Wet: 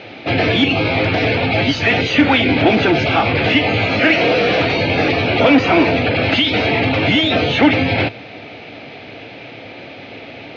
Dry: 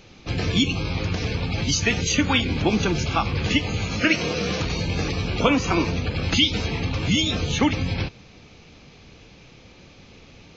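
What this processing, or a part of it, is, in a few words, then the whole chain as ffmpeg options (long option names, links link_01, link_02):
overdrive pedal into a guitar cabinet: -filter_complex "[0:a]asplit=2[link_01][link_02];[link_02]highpass=frequency=720:poles=1,volume=26dB,asoftclip=type=tanh:threshold=-4dB[link_03];[link_01][link_03]amix=inputs=2:normalize=0,lowpass=frequency=1900:poles=1,volume=-6dB,highpass=82,equalizer=frequency=110:width_type=q:width=4:gain=8,equalizer=frequency=180:width_type=q:width=4:gain=-5,equalizer=frequency=280:width_type=q:width=4:gain=6,equalizer=frequency=660:width_type=q:width=4:gain=8,equalizer=frequency=1100:width_type=q:width=4:gain=-9,equalizer=frequency=2100:width_type=q:width=4:gain=3,lowpass=frequency=4100:width=0.5412,lowpass=frequency=4100:width=1.3066"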